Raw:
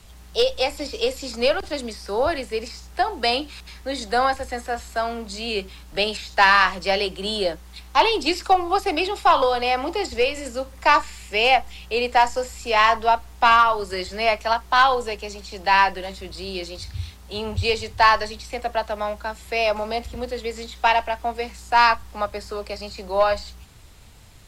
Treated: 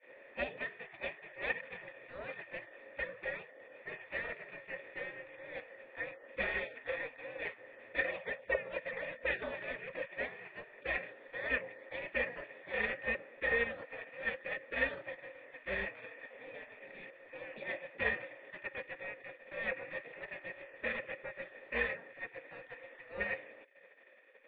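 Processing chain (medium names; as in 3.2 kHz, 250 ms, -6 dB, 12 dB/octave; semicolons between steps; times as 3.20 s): spectral gate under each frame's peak -25 dB weak; 1.56–2.39 s: dynamic bell 480 Hz, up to -5 dB, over -56 dBFS, Q 1.2; cascade formant filter e; trim +15 dB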